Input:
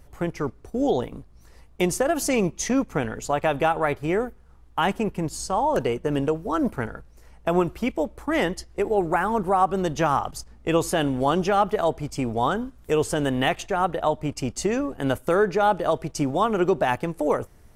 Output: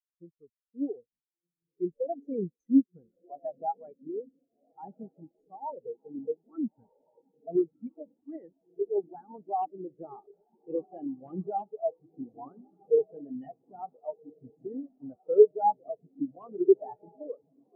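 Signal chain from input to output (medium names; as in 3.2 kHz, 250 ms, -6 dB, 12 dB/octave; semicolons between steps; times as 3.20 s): integer overflow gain 11 dB; echo that smears into a reverb 1379 ms, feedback 66%, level -4.5 dB; spectral contrast expander 4:1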